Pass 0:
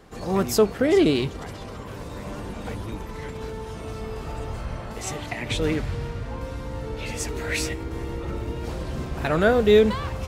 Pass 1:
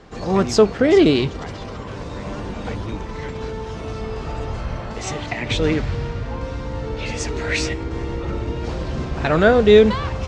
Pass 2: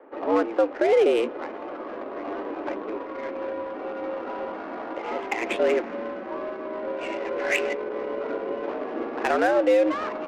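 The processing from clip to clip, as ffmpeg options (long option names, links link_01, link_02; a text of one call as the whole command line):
ffmpeg -i in.wav -af "lowpass=frequency=6700:width=0.5412,lowpass=frequency=6700:width=1.3066,volume=5dB" out.wav
ffmpeg -i in.wav -af "highpass=frequency=190:width_type=q:width=0.5412,highpass=frequency=190:width_type=q:width=1.307,lowpass=frequency=2900:width_type=q:width=0.5176,lowpass=frequency=2900:width_type=q:width=0.7071,lowpass=frequency=2900:width_type=q:width=1.932,afreqshift=98,adynamicsmooth=sensitivity=2:basefreq=1200,alimiter=limit=-12dB:level=0:latency=1:release=273" out.wav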